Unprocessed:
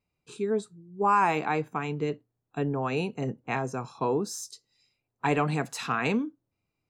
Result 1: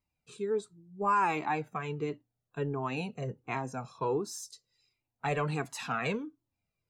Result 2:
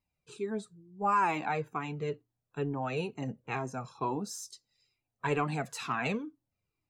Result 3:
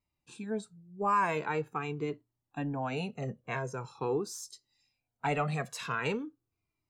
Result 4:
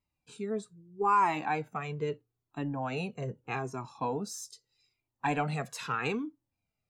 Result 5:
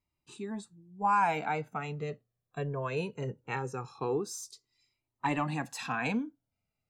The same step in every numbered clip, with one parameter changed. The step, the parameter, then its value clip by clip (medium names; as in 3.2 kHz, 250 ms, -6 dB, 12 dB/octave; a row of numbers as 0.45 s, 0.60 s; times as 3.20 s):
Shepard-style flanger, rate: 1.4 Hz, 2.2 Hz, 0.44 Hz, 0.79 Hz, 0.2 Hz